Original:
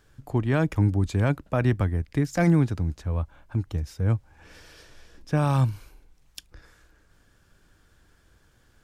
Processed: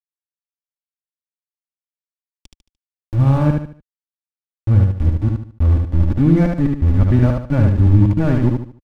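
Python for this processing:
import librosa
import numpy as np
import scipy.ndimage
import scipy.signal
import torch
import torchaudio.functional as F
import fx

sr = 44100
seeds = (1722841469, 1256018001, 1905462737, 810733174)

y = np.flip(x).copy()
y = np.where(np.abs(y) >= 10.0 ** (-27.0 / 20.0), y, 0.0)
y = fx.riaa(y, sr, side='playback')
y = y + 0.38 * np.pad(y, (int(3.5 * sr / 1000.0), 0))[:len(y)]
y = fx.echo_feedback(y, sr, ms=74, feedback_pct=34, wet_db=-3.5)
y = y * 10.0 ** (-1.0 / 20.0)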